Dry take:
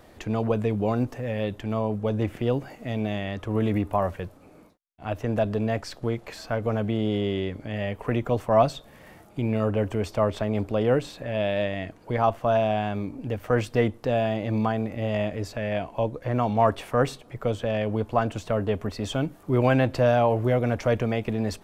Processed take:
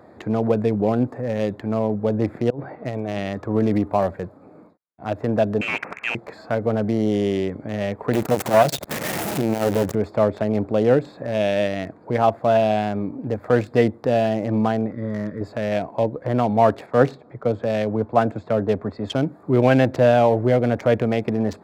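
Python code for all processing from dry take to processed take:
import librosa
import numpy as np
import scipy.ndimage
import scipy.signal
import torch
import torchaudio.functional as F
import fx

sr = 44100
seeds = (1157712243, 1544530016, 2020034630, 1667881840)

y = fx.chain(x, sr, fx.lowpass(hz=3700.0, slope=24),
    fx.peak_eq(hz=230.0, db=-8.5, octaves=0.38),
    fx.over_compress(threshold_db=-31.0, ratio=-0.5), at=(2.5, 3.18))
y = fx.chain(y, sr, fx.highpass(hz=190.0, slope=24),
    fx.freq_invert(carrier_hz=2900),
    fx.spectral_comp(ratio=2.0), at=(5.61, 6.15))
y = fx.chain(y, sr, fx.zero_step(step_db=-24.5),
    fx.high_shelf(hz=5700.0, db=4.5),
    fx.transformer_sat(knee_hz=770.0), at=(8.13, 9.95))
y = fx.chain(y, sr, fx.highpass(hz=92.0, slope=12),
    fx.fixed_phaser(hz=2700.0, stages=6), at=(14.91, 15.41))
y = fx.chain(y, sr, fx.lowpass(hz=6000.0, slope=12),
    fx.band_widen(depth_pct=40), at=(16.86, 19.15))
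y = fx.wiener(y, sr, points=15)
y = scipy.signal.sosfilt(scipy.signal.butter(2, 130.0, 'highpass', fs=sr, output='sos'), y)
y = fx.dynamic_eq(y, sr, hz=1100.0, q=2.9, threshold_db=-42.0, ratio=4.0, max_db=-6)
y = y * librosa.db_to_amplitude(6.0)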